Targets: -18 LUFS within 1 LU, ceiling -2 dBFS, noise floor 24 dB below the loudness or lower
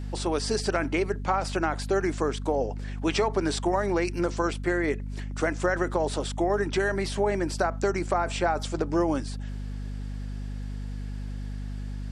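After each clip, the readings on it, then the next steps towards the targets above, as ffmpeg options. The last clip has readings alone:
hum 50 Hz; harmonics up to 250 Hz; hum level -31 dBFS; loudness -28.5 LUFS; peak -11.5 dBFS; loudness target -18.0 LUFS
-> -af "bandreject=f=50:t=h:w=6,bandreject=f=100:t=h:w=6,bandreject=f=150:t=h:w=6,bandreject=f=200:t=h:w=6,bandreject=f=250:t=h:w=6"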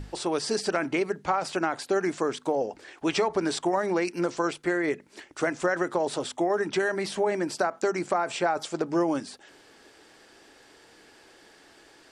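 hum none; loudness -28.0 LUFS; peak -12.5 dBFS; loudness target -18.0 LUFS
-> -af "volume=10dB"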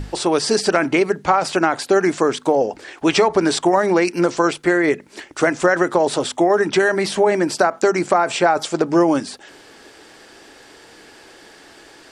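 loudness -18.0 LUFS; peak -2.5 dBFS; noise floor -46 dBFS

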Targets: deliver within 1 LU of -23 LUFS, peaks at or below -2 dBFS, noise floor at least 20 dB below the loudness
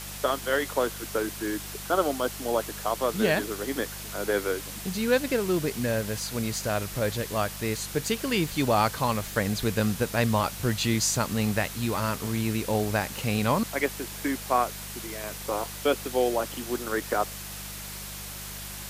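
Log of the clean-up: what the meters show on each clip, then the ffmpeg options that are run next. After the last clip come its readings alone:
hum 50 Hz; harmonics up to 200 Hz; hum level -41 dBFS; noise floor -39 dBFS; noise floor target -48 dBFS; loudness -28.0 LUFS; peak -10.0 dBFS; loudness target -23.0 LUFS
-> -af "bandreject=f=50:t=h:w=4,bandreject=f=100:t=h:w=4,bandreject=f=150:t=h:w=4,bandreject=f=200:t=h:w=4"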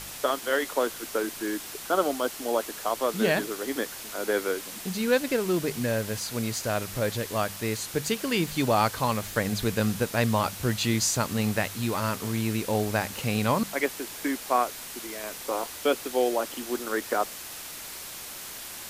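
hum none; noise floor -40 dBFS; noise floor target -48 dBFS
-> -af "afftdn=nr=8:nf=-40"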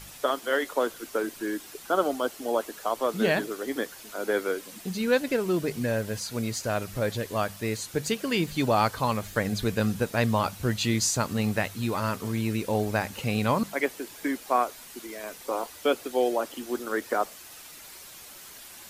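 noise floor -46 dBFS; noise floor target -48 dBFS
-> -af "afftdn=nr=6:nf=-46"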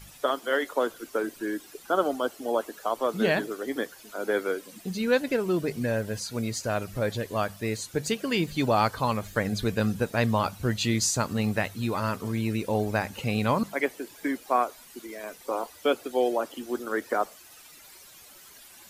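noise floor -51 dBFS; loudness -28.5 LUFS; peak -10.5 dBFS; loudness target -23.0 LUFS
-> -af "volume=5.5dB"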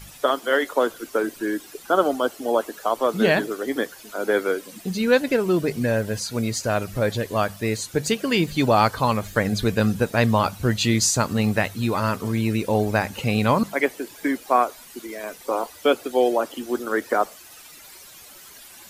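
loudness -23.0 LUFS; peak -5.0 dBFS; noise floor -45 dBFS

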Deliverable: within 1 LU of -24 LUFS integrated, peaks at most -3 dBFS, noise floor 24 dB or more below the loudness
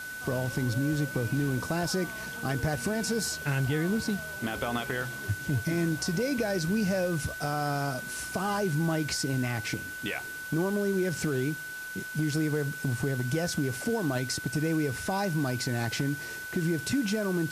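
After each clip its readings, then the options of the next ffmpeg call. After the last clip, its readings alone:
steady tone 1500 Hz; tone level -37 dBFS; noise floor -39 dBFS; noise floor target -54 dBFS; loudness -30.0 LUFS; peak -18.0 dBFS; loudness target -24.0 LUFS
-> -af "bandreject=f=1.5k:w=30"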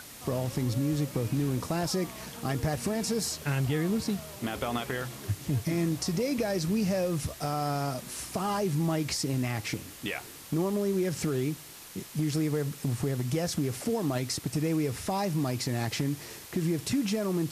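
steady tone none; noise floor -47 dBFS; noise floor target -55 dBFS
-> -af "afftdn=nr=8:nf=-47"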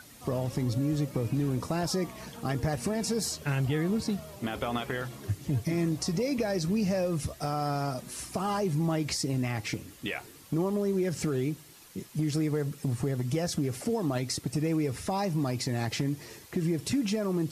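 noise floor -52 dBFS; noise floor target -55 dBFS
-> -af "afftdn=nr=6:nf=-52"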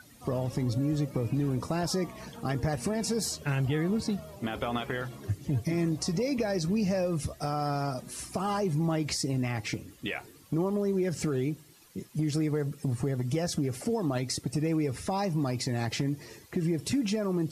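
noise floor -55 dBFS; loudness -31.0 LUFS; peak -19.5 dBFS; loudness target -24.0 LUFS
-> -af "volume=7dB"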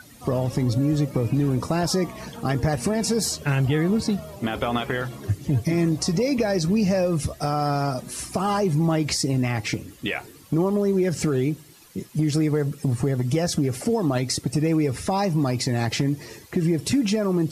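loudness -24.0 LUFS; peak -12.5 dBFS; noise floor -48 dBFS

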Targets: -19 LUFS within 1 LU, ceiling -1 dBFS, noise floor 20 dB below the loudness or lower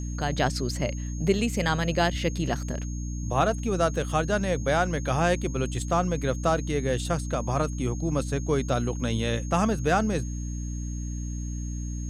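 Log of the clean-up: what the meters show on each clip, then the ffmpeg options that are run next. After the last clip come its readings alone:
hum 60 Hz; harmonics up to 300 Hz; hum level -30 dBFS; steady tone 6500 Hz; tone level -44 dBFS; loudness -27.0 LUFS; peak -9.5 dBFS; loudness target -19.0 LUFS
-> -af "bandreject=f=60:t=h:w=6,bandreject=f=120:t=h:w=6,bandreject=f=180:t=h:w=6,bandreject=f=240:t=h:w=6,bandreject=f=300:t=h:w=6"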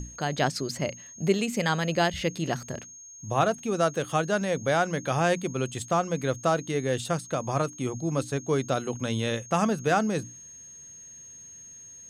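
hum none; steady tone 6500 Hz; tone level -44 dBFS
-> -af "bandreject=f=6.5k:w=30"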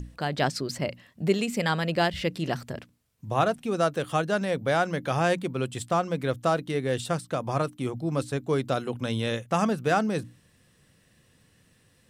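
steady tone none; loudness -27.5 LUFS; peak -10.0 dBFS; loudness target -19.0 LUFS
-> -af "volume=8.5dB"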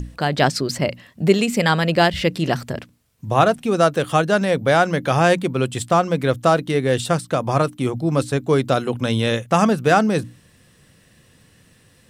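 loudness -19.0 LUFS; peak -1.5 dBFS; noise floor -55 dBFS

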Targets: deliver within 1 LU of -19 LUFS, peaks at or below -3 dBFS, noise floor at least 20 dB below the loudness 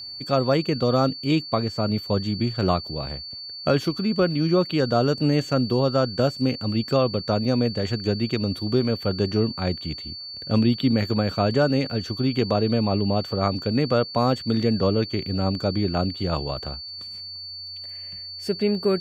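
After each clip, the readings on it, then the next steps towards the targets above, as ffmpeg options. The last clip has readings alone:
steady tone 4500 Hz; tone level -34 dBFS; loudness -24.0 LUFS; peak -6.0 dBFS; loudness target -19.0 LUFS
-> -af "bandreject=f=4.5k:w=30"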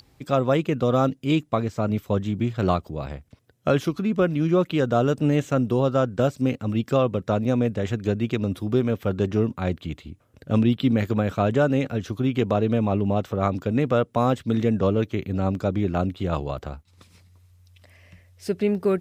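steady tone none; loudness -23.5 LUFS; peak -6.0 dBFS; loudness target -19.0 LUFS
-> -af "volume=4.5dB,alimiter=limit=-3dB:level=0:latency=1"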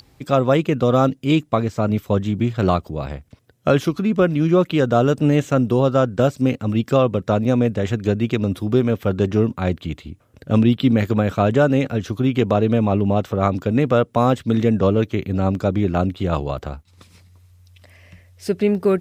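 loudness -19.0 LUFS; peak -3.0 dBFS; noise floor -55 dBFS

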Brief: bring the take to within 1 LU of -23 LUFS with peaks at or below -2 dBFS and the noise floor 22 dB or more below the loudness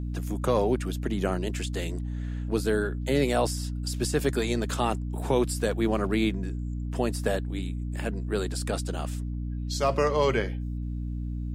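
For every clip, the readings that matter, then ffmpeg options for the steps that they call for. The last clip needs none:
hum 60 Hz; harmonics up to 300 Hz; hum level -29 dBFS; loudness -28.5 LUFS; peak -12.0 dBFS; loudness target -23.0 LUFS
-> -af "bandreject=f=60:t=h:w=6,bandreject=f=120:t=h:w=6,bandreject=f=180:t=h:w=6,bandreject=f=240:t=h:w=6,bandreject=f=300:t=h:w=6"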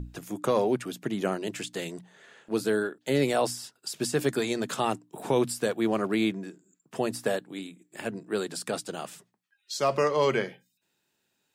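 hum none; loudness -29.0 LUFS; peak -12.5 dBFS; loudness target -23.0 LUFS
-> -af "volume=6dB"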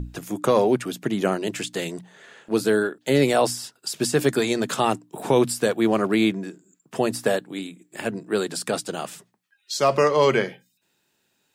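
loudness -23.0 LUFS; peak -6.5 dBFS; noise floor -71 dBFS

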